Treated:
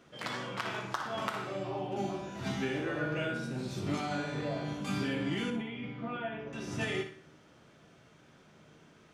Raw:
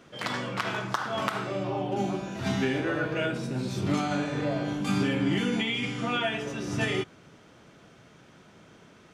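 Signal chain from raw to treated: 5.50–6.53 s: tape spacing loss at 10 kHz 42 dB; feedback comb 76 Hz, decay 0.58 s, mix 60%; on a send: flutter echo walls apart 10.2 m, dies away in 0.38 s

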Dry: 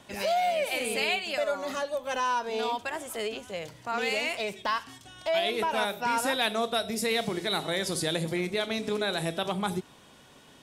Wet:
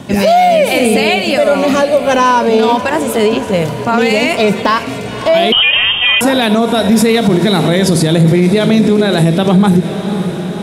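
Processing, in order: peaking EQ 170 Hz +14.5 dB 2.7 oct; echo that smears into a reverb 547 ms, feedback 64%, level -14.5 dB; 5.52–6.21 s: frequency inversion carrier 3.4 kHz; loudness maximiser +17 dB; trim -1 dB

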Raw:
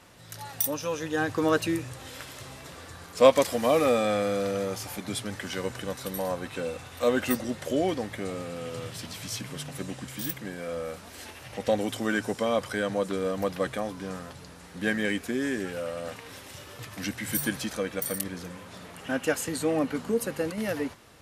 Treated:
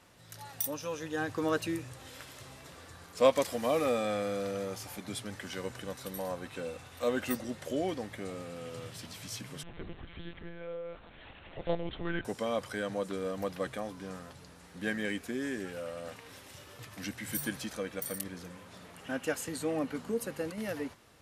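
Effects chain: 9.63–12.25 s: monotone LPC vocoder at 8 kHz 170 Hz; trim -6.5 dB

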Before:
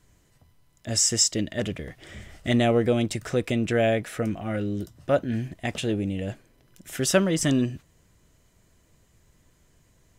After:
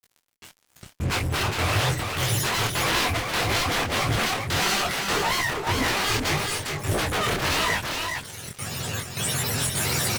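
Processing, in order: spectrum inverted on a logarithmic axis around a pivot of 490 Hz; recorder AGC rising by 12 dB/s; peaking EQ 8.7 kHz +9 dB 0.97 oct; compression 4:1, threshold -22 dBFS, peak gain reduction 7 dB; wavefolder -29 dBFS; trance gate "xxxx.xxxxx..xx" 180 bpm -24 dB; hum notches 60/120/180/240/300 Hz; fuzz box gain 48 dB, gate -53 dBFS; on a send: delay 407 ms -4 dB; on the sum: detune thickener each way 59 cents; trim -7 dB

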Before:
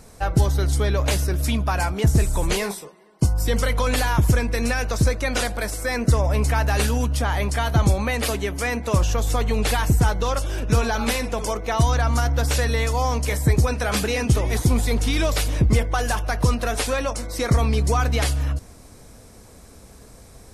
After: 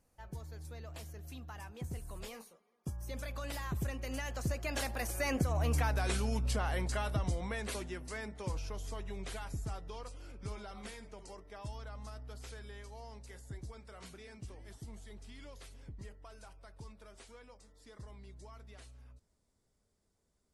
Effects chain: Doppler pass-by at 5.86 s, 38 m/s, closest 4.9 m; compression 10:1, threshold -35 dBFS, peak gain reduction 18.5 dB; trim +6.5 dB

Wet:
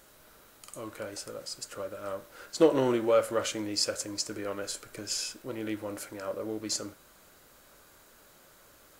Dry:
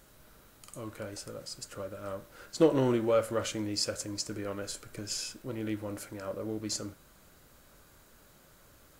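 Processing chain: tone controls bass -9 dB, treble 0 dB; trim +3 dB

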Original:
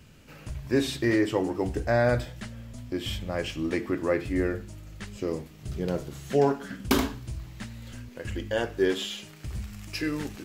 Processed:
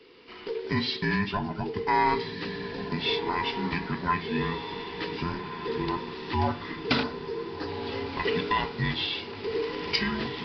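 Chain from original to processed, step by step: every band turned upside down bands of 500 Hz; recorder AGC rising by 9.2 dB/s; tilt EQ +2 dB/octave; resampled via 11.025 kHz; 7.03–7.68 s: high-order bell 2.7 kHz -14 dB 1.1 oct; echo that smears into a reverb 1502 ms, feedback 54%, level -9 dB

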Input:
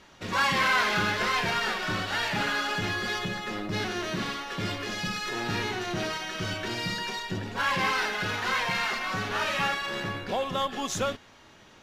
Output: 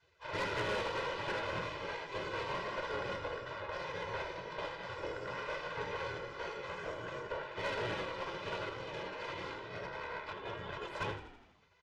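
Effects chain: high-pass 100 Hz 24 dB/octave; spectral gate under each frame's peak -15 dB weak; Bessel low-pass 1.1 kHz, order 2; hum notches 50/100/150/200/250/300/350 Hz; comb 2 ms, depth 94%; 8.69–10.82 s: compressor with a negative ratio -48 dBFS, ratio -1; valve stage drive 38 dB, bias 0.55; frequency-shifting echo 81 ms, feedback 58%, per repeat -38 Hz, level -11.5 dB; trim +7 dB

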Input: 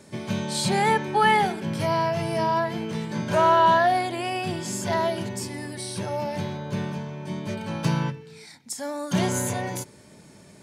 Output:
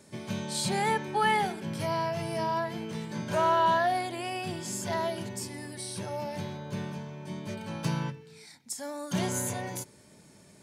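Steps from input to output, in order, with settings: treble shelf 6 kHz +5 dB; trim -6.5 dB

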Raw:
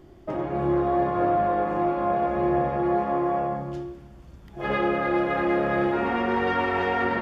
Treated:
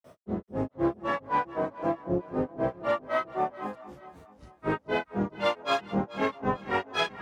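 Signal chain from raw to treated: high-pass 70 Hz; tone controls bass -2 dB, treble +7 dB; granulator 177 ms, grains 3.9 per s, pitch spread up and down by 12 st; echo whose repeats swap between lows and highs 217 ms, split 900 Hz, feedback 62%, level -12 dB

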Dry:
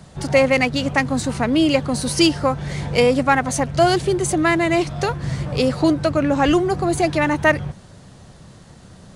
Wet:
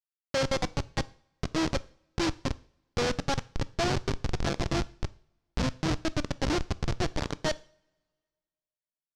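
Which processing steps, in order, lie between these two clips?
Schmitt trigger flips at -13 dBFS; resonant low-pass 5.5 kHz, resonance Q 1.9; two-slope reverb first 0.47 s, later 1.8 s, from -24 dB, DRR 16.5 dB; trim -7 dB

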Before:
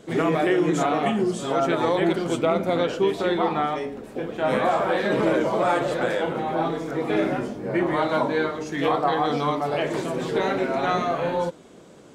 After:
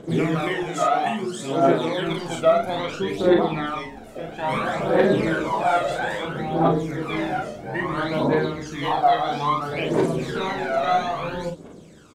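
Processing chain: 0.63–2.07 s: high-pass 210 Hz 6 dB/octave; phaser 0.6 Hz, delay 1.6 ms, feedback 73%; early reflections 37 ms -5 dB, 50 ms -9 dB; trim -3.5 dB

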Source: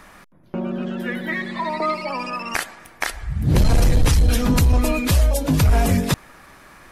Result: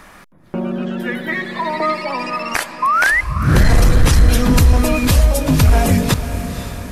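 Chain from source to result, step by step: painted sound rise, 2.82–3.21 s, 1–2.1 kHz -18 dBFS; echo that smears into a reverb 519 ms, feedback 54%, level -11 dB; trim +4 dB

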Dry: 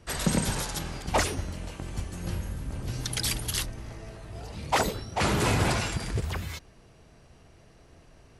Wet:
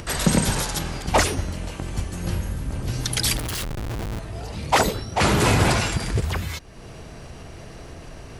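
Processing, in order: upward compressor, threshold -35 dBFS; 3.37–4.19 s: Schmitt trigger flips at -40 dBFS; trim +6.5 dB

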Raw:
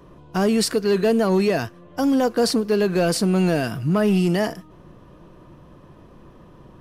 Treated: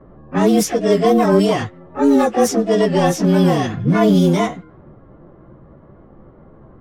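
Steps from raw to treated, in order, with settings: frequency axis rescaled in octaves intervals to 108%; harmony voices +7 st -6 dB; level-controlled noise filter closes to 990 Hz, open at -14.5 dBFS; trim +5.5 dB

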